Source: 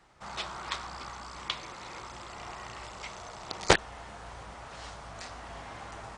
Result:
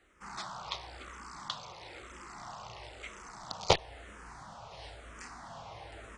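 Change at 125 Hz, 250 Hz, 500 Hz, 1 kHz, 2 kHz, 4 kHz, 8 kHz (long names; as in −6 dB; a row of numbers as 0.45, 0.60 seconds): −2.5, −7.0, −3.0, −3.0, −8.5, −2.5, −6.0 decibels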